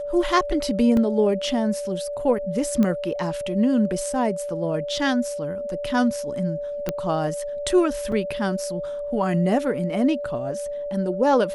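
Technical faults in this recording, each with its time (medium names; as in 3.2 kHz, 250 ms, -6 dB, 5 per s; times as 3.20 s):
whine 580 Hz -27 dBFS
0.97 s: dropout 2 ms
2.83 s: pop -12 dBFS
6.89 s: pop -10 dBFS
8.12 s: dropout 4.1 ms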